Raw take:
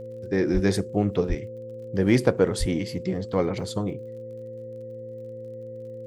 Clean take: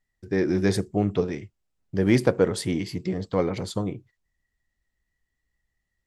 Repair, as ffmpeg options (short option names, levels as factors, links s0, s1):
-filter_complex "[0:a]adeclick=t=4,bandreject=f=114.3:t=h:w=4,bandreject=f=228.6:t=h:w=4,bandreject=f=342.9:t=h:w=4,bandreject=f=457.2:t=h:w=4,bandreject=f=520:w=30,asplit=3[s0][s1][s2];[s0]afade=t=out:st=0.53:d=0.02[s3];[s1]highpass=f=140:w=0.5412,highpass=f=140:w=1.3066,afade=t=in:st=0.53:d=0.02,afade=t=out:st=0.65:d=0.02[s4];[s2]afade=t=in:st=0.65:d=0.02[s5];[s3][s4][s5]amix=inputs=3:normalize=0,asplit=3[s6][s7][s8];[s6]afade=t=out:st=1.28:d=0.02[s9];[s7]highpass=f=140:w=0.5412,highpass=f=140:w=1.3066,afade=t=in:st=1.28:d=0.02,afade=t=out:st=1.4:d=0.02[s10];[s8]afade=t=in:st=1.4:d=0.02[s11];[s9][s10][s11]amix=inputs=3:normalize=0,asplit=3[s12][s13][s14];[s12]afade=t=out:st=2.59:d=0.02[s15];[s13]highpass=f=140:w=0.5412,highpass=f=140:w=1.3066,afade=t=in:st=2.59:d=0.02,afade=t=out:st=2.71:d=0.02[s16];[s14]afade=t=in:st=2.71:d=0.02[s17];[s15][s16][s17]amix=inputs=3:normalize=0"